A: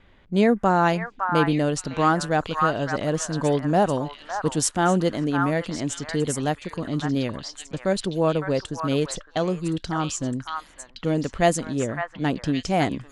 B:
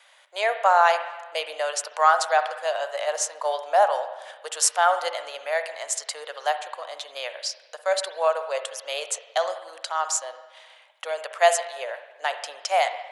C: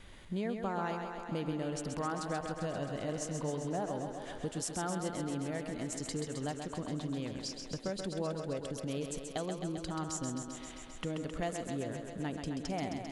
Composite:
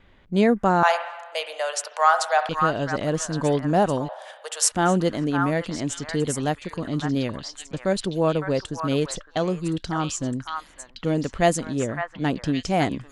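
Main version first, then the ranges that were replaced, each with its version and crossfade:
A
0:00.83–0:02.49: punch in from B
0:04.09–0:04.72: punch in from B
not used: C

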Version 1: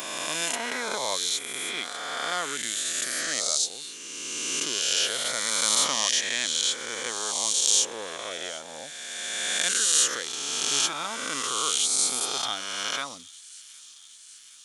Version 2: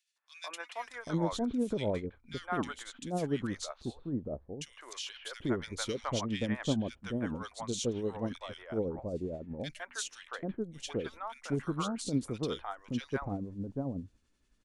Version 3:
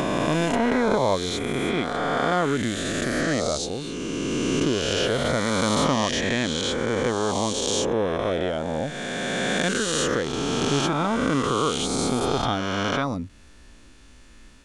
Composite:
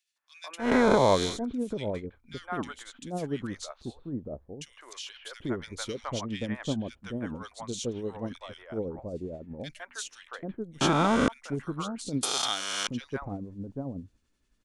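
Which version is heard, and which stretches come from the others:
2
0:00.66–0:01.31: punch in from 3, crossfade 0.16 s
0:10.81–0:11.28: punch in from 3
0:12.23–0:12.87: punch in from 1

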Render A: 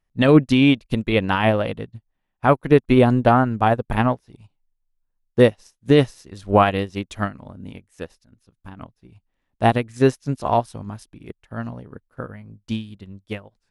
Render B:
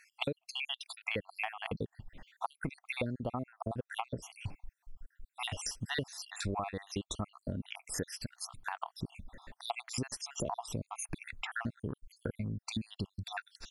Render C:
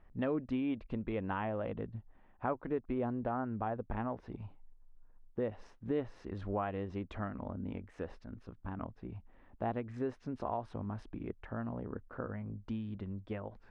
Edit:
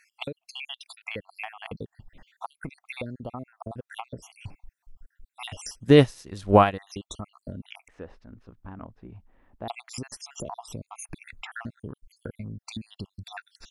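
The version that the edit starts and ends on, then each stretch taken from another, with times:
B
0:05.83–0:06.67: punch in from A, crossfade 0.24 s
0:07.88–0:09.68: punch in from C

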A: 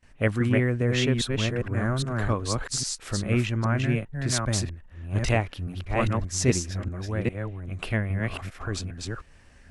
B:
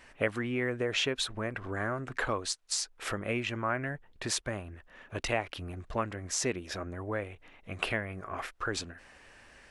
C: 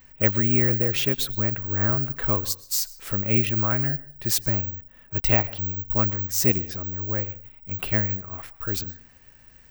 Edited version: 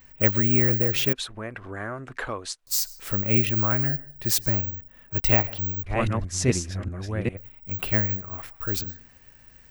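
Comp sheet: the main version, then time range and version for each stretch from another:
C
0:01.13–0:02.67: punch in from B
0:05.83–0:07.37: punch in from A

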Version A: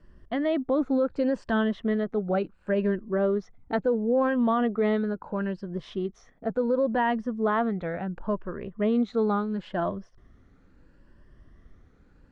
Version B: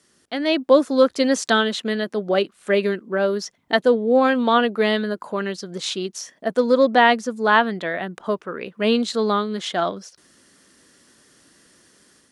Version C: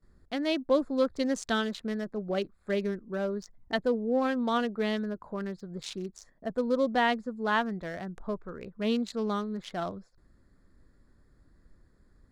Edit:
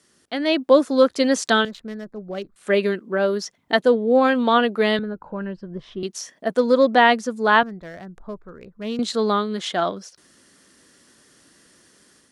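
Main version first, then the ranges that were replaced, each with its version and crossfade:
B
0:01.65–0:02.56: punch in from C
0:04.99–0:06.03: punch in from A
0:07.63–0:08.99: punch in from C

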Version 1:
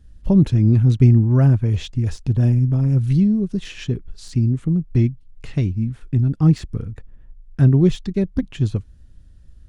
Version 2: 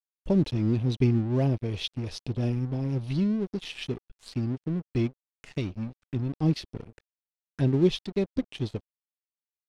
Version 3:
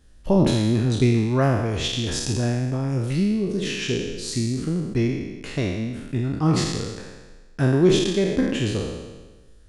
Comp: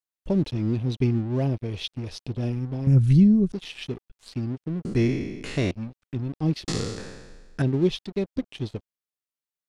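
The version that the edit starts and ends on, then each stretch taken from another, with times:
2
0:02.87–0:03.52: punch in from 1
0:04.85–0:05.71: punch in from 3
0:06.68–0:07.62: punch in from 3

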